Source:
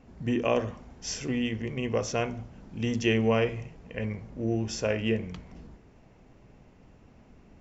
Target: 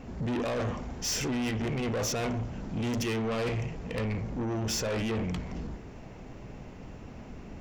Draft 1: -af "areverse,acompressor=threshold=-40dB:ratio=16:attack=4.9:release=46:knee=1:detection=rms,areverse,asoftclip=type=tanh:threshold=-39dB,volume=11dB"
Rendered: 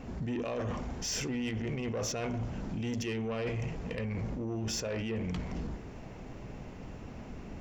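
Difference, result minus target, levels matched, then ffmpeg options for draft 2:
compressor: peak gain reduction +10 dB
-af "areverse,acompressor=threshold=-29.5dB:ratio=16:attack=4.9:release=46:knee=1:detection=rms,areverse,asoftclip=type=tanh:threshold=-39dB,volume=11dB"

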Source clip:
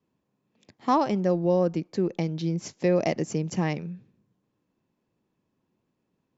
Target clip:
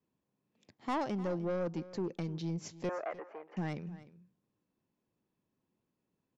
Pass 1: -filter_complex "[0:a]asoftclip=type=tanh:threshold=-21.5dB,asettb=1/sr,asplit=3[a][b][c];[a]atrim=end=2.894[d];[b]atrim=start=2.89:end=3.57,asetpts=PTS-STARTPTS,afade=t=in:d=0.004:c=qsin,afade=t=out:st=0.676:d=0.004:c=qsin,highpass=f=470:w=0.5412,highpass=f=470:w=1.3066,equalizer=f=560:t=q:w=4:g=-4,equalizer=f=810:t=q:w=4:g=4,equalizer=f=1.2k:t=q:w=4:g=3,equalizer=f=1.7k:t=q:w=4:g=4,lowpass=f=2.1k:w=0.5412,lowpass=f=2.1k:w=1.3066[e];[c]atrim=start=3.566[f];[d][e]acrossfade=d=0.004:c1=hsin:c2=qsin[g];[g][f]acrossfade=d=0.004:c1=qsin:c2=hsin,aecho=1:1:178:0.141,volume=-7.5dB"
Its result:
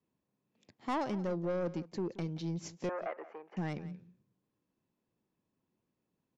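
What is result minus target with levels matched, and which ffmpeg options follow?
echo 0.125 s early
-filter_complex "[0:a]asoftclip=type=tanh:threshold=-21.5dB,asettb=1/sr,asplit=3[a][b][c];[a]atrim=end=2.894[d];[b]atrim=start=2.89:end=3.57,asetpts=PTS-STARTPTS,afade=t=in:d=0.004:c=qsin,afade=t=out:st=0.676:d=0.004:c=qsin,highpass=f=470:w=0.5412,highpass=f=470:w=1.3066,equalizer=f=560:t=q:w=4:g=-4,equalizer=f=810:t=q:w=4:g=4,equalizer=f=1.2k:t=q:w=4:g=3,equalizer=f=1.7k:t=q:w=4:g=4,lowpass=f=2.1k:w=0.5412,lowpass=f=2.1k:w=1.3066[e];[c]atrim=start=3.566[f];[d][e]acrossfade=d=0.004:c1=hsin:c2=qsin[g];[g][f]acrossfade=d=0.004:c1=qsin:c2=hsin,aecho=1:1:303:0.141,volume=-7.5dB"

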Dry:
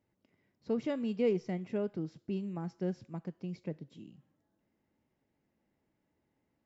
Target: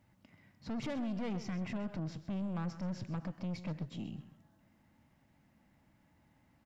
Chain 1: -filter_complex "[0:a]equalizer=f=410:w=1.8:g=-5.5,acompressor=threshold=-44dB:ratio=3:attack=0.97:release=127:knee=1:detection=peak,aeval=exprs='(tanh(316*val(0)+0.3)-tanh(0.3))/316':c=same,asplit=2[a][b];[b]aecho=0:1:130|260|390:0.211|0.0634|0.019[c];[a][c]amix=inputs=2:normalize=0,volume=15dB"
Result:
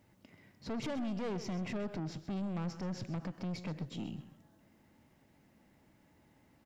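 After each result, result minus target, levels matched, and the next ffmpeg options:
500 Hz band +3.0 dB; 4000 Hz band +3.0 dB
-filter_complex "[0:a]equalizer=f=410:w=1.8:g=-16,acompressor=threshold=-44dB:ratio=3:attack=0.97:release=127:knee=1:detection=peak,aeval=exprs='(tanh(316*val(0)+0.3)-tanh(0.3))/316':c=same,asplit=2[a][b];[b]aecho=0:1:130|260|390:0.211|0.0634|0.019[c];[a][c]amix=inputs=2:normalize=0,volume=15dB"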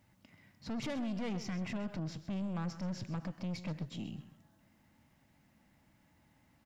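4000 Hz band +3.5 dB
-filter_complex "[0:a]equalizer=f=410:w=1.8:g=-16,acompressor=threshold=-44dB:ratio=3:attack=0.97:release=127:knee=1:detection=peak,highshelf=f=2.5k:g=-6,aeval=exprs='(tanh(316*val(0)+0.3)-tanh(0.3))/316':c=same,asplit=2[a][b];[b]aecho=0:1:130|260|390:0.211|0.0634|0.019[c];[a][c]amix=inputs=2:normalize=0,volume=15dB"

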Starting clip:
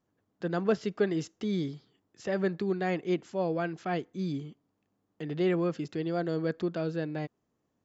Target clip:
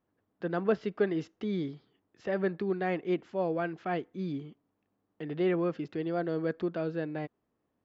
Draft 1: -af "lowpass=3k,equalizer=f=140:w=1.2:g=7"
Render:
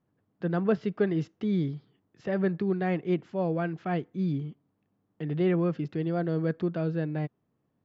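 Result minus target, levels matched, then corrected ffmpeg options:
125 Hz band +5.5 dB
-af "lowpass=3k,equalizer=f=140:w=1.2:g=-4"

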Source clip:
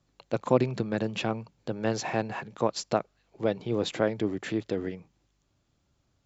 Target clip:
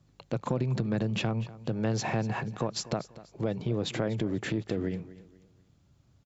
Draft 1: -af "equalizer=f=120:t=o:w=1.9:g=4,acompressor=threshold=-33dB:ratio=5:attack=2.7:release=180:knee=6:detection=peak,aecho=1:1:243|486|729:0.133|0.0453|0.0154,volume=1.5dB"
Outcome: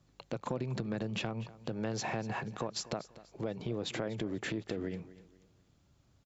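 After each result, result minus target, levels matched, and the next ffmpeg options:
compressor: peak gain reduction +4.5 dB; 125 Hz band -3.0 dB
-af "equalizer=f=120:t=o:w=1.9:g=4,acompressor=threshold=-25.5dB:ratio=5:attack=2.7:release=180:knee=6:detection=peak,aecho=1:1:243|486|729:0.133|0.0453|0.0154,volume=1.5dB"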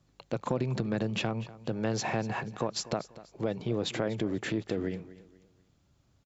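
125 Hz band -3.0 dB
-af "equalizer=f=120:t=o:w=1.9:g=10,acompressor=threshold=-25.5dB:ratio=5:attack=2.7:release=180:knee=6:detection=peak,aecho=1:1:243|486|729:0.133|0.0453|0.0154,volume=1.5dB"

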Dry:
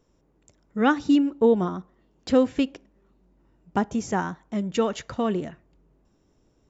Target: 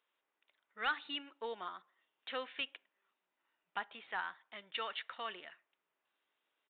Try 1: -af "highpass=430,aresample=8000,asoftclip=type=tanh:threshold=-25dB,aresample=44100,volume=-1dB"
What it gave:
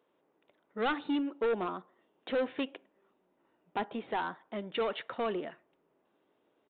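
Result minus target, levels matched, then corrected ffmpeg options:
500 Hz band +7.0 dB
-af "highpass=1.7k,aresample=8000,asoftclip=type=tanh:threshold=-25dB,aresample=44100,volume=-1dB"

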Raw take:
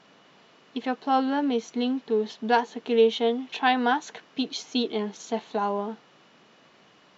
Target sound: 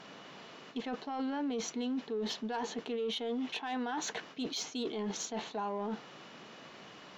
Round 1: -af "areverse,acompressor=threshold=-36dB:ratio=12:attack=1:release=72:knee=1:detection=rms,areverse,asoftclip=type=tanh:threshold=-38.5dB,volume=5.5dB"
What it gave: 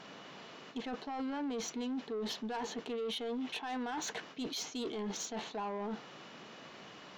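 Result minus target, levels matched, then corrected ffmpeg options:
soft clip: distortion +11 dB
-af "areverse,acompressor=threshold=-36dB:ratio=12:attack=1:release=72:knee=1:detection=rms,areverse,asoftclip=type=tanh:threshold=-31.5dB,volume=5.5dB"

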